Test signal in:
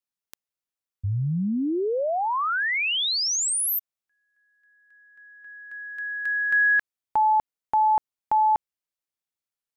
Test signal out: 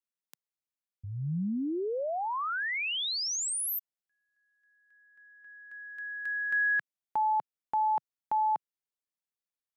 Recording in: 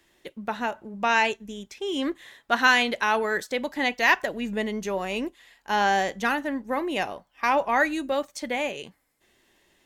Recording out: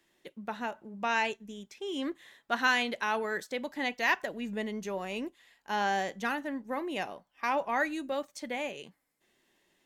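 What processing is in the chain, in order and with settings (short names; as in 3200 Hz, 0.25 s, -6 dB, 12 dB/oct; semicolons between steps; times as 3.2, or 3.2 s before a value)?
resonant low shelf 120 Hz -6 dB, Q 1.5; gain -7.5 dB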